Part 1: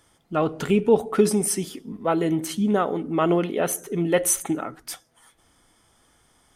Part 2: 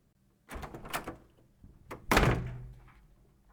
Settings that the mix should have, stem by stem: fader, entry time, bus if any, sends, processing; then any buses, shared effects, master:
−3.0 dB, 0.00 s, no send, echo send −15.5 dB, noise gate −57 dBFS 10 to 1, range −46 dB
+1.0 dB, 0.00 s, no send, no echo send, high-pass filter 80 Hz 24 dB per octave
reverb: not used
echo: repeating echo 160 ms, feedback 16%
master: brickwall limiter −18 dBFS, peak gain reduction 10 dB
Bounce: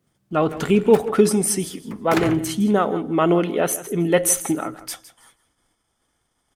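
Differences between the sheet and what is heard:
stem 1 −3.0 dB → +3.0 dB
master: missing brickwall limiter −18 dBFS, peak gain reduction 10 dB

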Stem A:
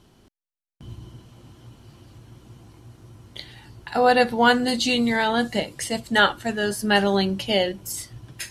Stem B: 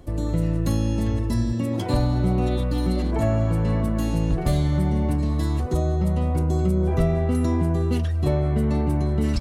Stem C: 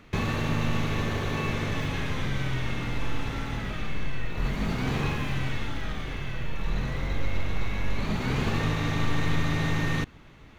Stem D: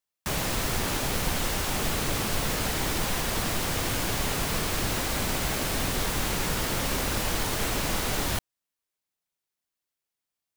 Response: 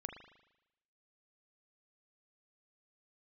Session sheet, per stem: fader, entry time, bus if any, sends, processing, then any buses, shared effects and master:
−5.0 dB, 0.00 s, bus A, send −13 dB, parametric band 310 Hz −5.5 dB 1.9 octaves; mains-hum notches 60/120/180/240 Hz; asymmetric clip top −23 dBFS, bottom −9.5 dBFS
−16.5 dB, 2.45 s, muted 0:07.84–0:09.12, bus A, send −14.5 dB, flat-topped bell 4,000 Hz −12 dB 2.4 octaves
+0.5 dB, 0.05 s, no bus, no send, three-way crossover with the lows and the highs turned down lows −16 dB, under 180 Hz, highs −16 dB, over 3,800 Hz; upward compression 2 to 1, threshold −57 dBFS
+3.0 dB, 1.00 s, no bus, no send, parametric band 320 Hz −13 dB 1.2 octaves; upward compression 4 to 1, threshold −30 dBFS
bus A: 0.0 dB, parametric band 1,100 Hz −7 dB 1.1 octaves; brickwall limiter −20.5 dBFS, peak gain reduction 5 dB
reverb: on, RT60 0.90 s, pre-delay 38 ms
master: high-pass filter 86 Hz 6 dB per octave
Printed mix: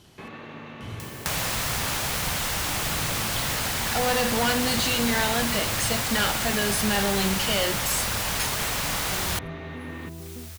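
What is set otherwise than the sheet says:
stem A −5.0 dB → +6.0 dB
stem C +0.5 dB → −9.0 dB

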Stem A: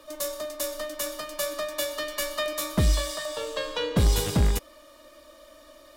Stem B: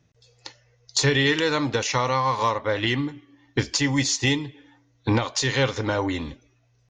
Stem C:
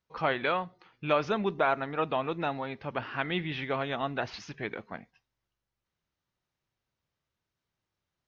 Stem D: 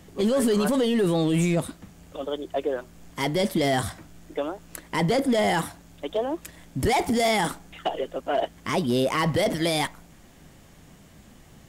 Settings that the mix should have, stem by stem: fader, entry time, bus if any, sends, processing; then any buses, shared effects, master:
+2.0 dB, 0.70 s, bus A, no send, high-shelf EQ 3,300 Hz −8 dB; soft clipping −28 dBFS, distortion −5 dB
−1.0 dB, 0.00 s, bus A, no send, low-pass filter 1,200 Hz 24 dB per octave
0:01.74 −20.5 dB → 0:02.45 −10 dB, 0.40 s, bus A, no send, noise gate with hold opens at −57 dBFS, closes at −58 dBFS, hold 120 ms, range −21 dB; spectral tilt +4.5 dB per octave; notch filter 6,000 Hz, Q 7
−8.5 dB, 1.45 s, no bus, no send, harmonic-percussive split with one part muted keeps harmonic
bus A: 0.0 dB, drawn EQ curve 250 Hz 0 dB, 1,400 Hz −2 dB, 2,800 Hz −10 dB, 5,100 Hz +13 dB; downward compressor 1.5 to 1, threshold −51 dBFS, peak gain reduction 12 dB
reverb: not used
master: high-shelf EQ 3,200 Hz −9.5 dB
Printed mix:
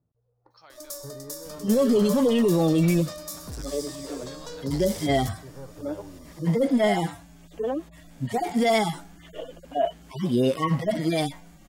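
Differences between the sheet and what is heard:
stem B −1.0 dB → −11.5 dB
stem D −8.5 dB → +2.0 dB
master: missing high-shelf EQ 3,200 Hz −9.5 dB

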